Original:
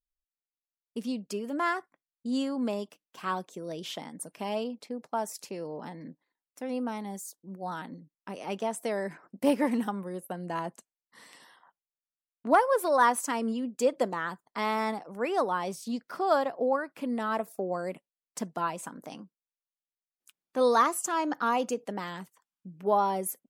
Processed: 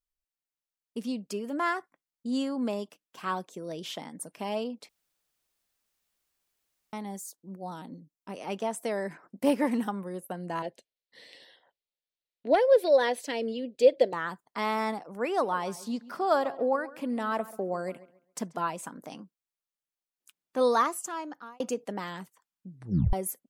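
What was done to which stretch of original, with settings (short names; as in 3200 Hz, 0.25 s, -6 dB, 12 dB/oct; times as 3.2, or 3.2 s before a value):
4.89–6.93 room tone
7.56–8.29 bell 1700 Hz -12 dB 1.3 oct
10.62–14.13 EQ curve 120 Hz 0 dB, 190 Hz -8 dB, 540 Hz +7 dB, 1200 Hz -18 dB, 1800 Hz 0 dB, 4100 Hz +7 dB, 6800 Hz -10 dB
15.29–18.66 darkening echo 0.136 s, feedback 28%, low-pass 3000 Hz, level -17.5 dB
20.63–21.6 fade out
22.71 tape stop 0.42 s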